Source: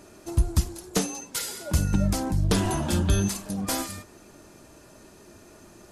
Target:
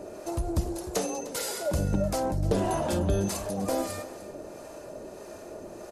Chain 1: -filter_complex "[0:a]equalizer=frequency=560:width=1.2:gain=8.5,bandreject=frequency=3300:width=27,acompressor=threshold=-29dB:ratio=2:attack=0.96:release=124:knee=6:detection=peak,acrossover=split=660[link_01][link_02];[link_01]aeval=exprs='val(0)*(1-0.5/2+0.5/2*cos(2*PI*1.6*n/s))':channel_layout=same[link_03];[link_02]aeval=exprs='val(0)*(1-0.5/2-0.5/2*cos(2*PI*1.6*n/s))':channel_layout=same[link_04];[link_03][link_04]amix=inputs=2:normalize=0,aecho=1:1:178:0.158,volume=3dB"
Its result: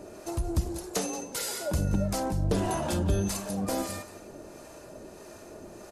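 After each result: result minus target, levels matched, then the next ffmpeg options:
echo 125 ms early; 500 Hz band −3.0 dB
-filter_complex "[0:a]equalizer=frequency=560:width=1.2:gain=8.5,bandreject=frequency=3300:width=27,acompressor=threshold=-29dB:ratio=2:attack=0.96:release=124:knee=6:detection=peak,acrossover=split=660[link_01][link_02];[link_01]aeval=exprs='val(0)*(1-0.5/2+0.5/2*cos(2*PI*1.6*n/s))':channel_layout=same[link_03];[link_02]aeval=exprs='val(0)*(1-0.5/2-0.5/2*cos(2*PI*1.6*n/s))':channel_layout=same[link_04];[link_03][link_04]amix=inputs=2:normalize=0,aecho=1:1:303:0.158,volume=3dB"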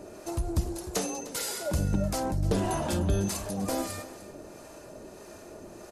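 500 Hz band −3.0 dB
-filter_complex "[0:a]equalizer=frequency=560:width=1.2:gain=15,bandreject=frequency=3300:width=27,acompressor=threshold=-29dB:ratio=2:attack=0.96:release=124:knee=6:detection=peak,acrossover=split=660[link_01][link_02];[link_01]aeval=exprs='val(0)*(1-0.5/2+0.5/2*cos(2*PI*1.6*n/s))':channel_layout=same[link_03];[link_02]aeval=exprs='val(0)*(1-0.5/2-0.5/2*cos(2*PI*1.6*n/s))':channel_layout=same[link_04];[link_03][link_04]amix=inputs=2:normalize=0,aecho=1:1:303:0.158,volume=3dB"

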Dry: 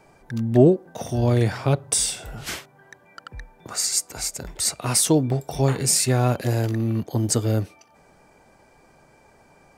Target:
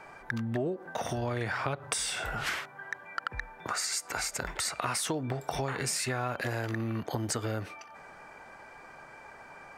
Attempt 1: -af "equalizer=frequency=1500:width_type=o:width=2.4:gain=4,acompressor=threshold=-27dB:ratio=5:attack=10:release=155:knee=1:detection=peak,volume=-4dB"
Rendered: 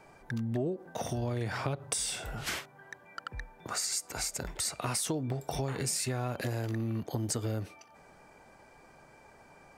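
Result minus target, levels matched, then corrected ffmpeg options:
2,000 Hz band −6.0 dB
-af "equalizer=frequency=1500:width_type=o:width=2.4:gain=15.5,acompressor=threshold=-27dB:ratio=5:attack=10:release=155:knee=1:detection=peak,volume=-4dB"

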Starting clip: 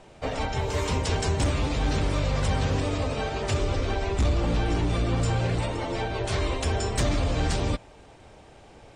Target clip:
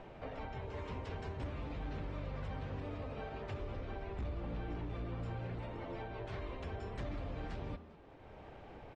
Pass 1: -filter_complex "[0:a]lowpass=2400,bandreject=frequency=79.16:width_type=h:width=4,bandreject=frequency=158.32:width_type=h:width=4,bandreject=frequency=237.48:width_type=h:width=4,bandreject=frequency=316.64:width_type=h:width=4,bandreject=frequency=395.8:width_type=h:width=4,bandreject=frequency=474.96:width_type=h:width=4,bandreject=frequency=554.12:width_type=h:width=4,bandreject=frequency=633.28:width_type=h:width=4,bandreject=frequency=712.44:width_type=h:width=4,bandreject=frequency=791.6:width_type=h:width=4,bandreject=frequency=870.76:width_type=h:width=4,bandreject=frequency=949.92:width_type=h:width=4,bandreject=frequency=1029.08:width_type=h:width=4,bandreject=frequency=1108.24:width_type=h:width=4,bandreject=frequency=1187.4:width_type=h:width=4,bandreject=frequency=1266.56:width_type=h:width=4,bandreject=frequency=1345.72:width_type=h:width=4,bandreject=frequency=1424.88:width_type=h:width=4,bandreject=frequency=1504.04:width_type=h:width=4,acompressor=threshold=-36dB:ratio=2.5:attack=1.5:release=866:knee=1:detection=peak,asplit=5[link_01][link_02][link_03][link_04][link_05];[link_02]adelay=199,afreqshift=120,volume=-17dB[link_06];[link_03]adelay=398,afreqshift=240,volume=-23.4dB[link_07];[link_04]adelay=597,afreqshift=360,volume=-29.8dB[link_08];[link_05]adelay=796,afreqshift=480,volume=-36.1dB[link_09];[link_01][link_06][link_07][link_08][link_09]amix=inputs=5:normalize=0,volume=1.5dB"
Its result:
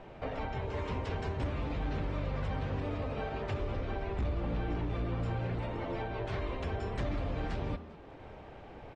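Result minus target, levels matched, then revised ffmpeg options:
downward compressor: peak gain reduction −7 dB
-filter_complex "[0:a]lowpass=2400,bandreject=frequency=79.16:width_type=h:width=4,bandreject=frequency=158.32:width_type=h:width=4,bandreject=frequency=237.48:width_type=h:width=4,bandreject=frequency=316.64:width_type=h:width=4,bandreject=frequency=395.8:width_type=h:width=4,bandreject=frequency=474.96:width_type=h:width=4,bandreject=frequency=554.12:width_type=h:width=4,bandreject=frequency=633.28:width_type=h:width=4,bandreject=frequency=712.44:width_type=h:width=4,bandreject=frequency=791.6:width_type=h:width=4,bandreject=frequency=870.76:width_type=h:width=4,bandreject=frequency=949.92:width_type=h:width=4,bandreject=frequency=1029.08:width_type=h:width=4,bandreject=frequency=1108.24:width_type=h:width=4,bandreject=frequency=1187.4:width_type=h:width=4,bandreject=frequency=1266.56:width_type=h:width=4,bandreject=frequency=1345.72:width_type=h:width=4,bandreject=frequency=1424.88:width_type=h:width=4,bandreject=frequency=1504.04:width_type=h:width=4,acompressor=threshold=-48dB:ratio=2.5:attack=1.5:release=866:knee=1:detection=peak,asplit=5[link_01][link_02][link_03][link_04][link_05];[link_02]adelay=199,afreqshift=120,volume=-17dB[link_06];[link_03]adelay=398,afreqshift=240,volume=-23.4dB[link_07];[link_04]adelay=597,afreqshift=360,volume=-29.8dB[link_08];[link_05]adelay=796,afreqshift=480,volume=-36.1dB[link_09];[link_01][link_06][link_07][link_08][link_09]amix=inputs=5:normalize=0,volume=1.5dB"

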